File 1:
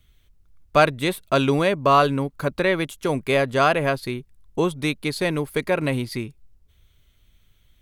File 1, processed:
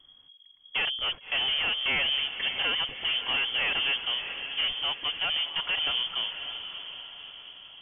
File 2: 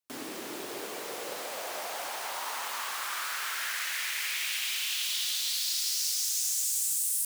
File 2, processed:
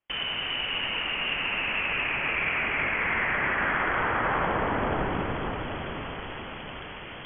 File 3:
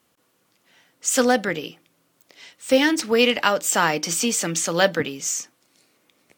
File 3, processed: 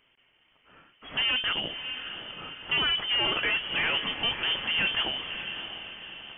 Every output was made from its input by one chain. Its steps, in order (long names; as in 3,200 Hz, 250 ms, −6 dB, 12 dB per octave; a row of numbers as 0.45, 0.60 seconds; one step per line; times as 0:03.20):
tube saturation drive 27 dB, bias 0.3
voice inversion scrambler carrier 3,300 Hz
feedback delay with all-pass diffusion 615 ms, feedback 49%, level −9 dB
loudness normalisation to −27 LKFS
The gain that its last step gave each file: +1.0, +11.0, +3.0 decibels